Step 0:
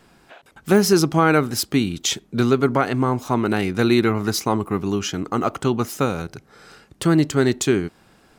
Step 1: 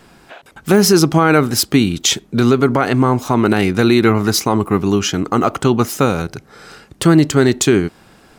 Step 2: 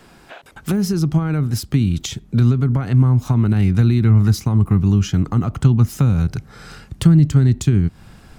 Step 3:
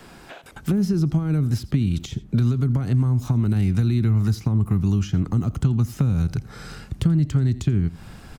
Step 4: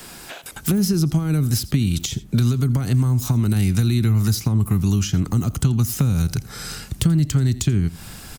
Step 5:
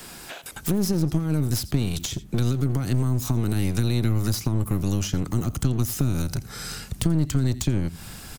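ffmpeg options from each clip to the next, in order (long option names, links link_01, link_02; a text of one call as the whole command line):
ffmpeg -i in.wav -af "alimiter=level_in=8.5dB:limit=-1dB:release=50:level=0:latency=1,volume=-1dB" out.wav
ffmpeg -i in.wav -filter_complex "[0:a]acrossover=split=220[link_01][link_02];[link_02]acompressor=threshold=-25dB:ratio=10[link_03];[link_01][link_03]amix=inputs=2:normalize=0,asubboost=boost=5:cutoff=160,volume=-1dB" out.wav
ffmpeg -i in.wav -filter_complex "[0:a]aecho=1:1:83:0.0891,acrossover=split=460|4300[link_01][link_02][link_03];[link_01]acompressor=threshold=-20dB:ratio=4[link_04];[link_02]acompressor=threshold=-43dB:ratio=4[link_05];[link_03]acompressor=threshold=-48dB:ratio=4[link_06];[link_04][link_05][link_06]amix=inputs=3:normalize=0,volume=2dB" out.wav
ffmpeg -i in.wav -af "crystalizer=i=4:c=0,volume=1.5dB" out.wav
ffmpeg -i in.wav -af "aeval=exprs='clip(val(0),-1,0.0501)':channel_layout=same,volume=-2dB" out.wav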